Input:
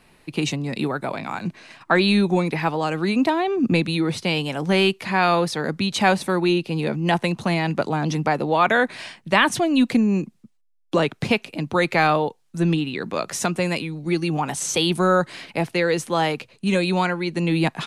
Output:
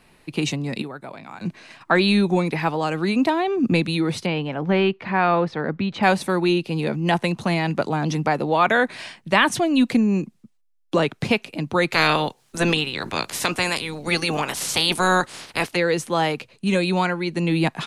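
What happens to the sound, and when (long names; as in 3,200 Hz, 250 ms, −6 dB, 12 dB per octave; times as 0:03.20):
0:00.82–0:01.41: clip gain −9.5 dB
0:04.26–0:06.03: low-pass filter 2,200 Hz
0:11.92–0:15.75: ceiling on every frequency bin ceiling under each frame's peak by 20 dB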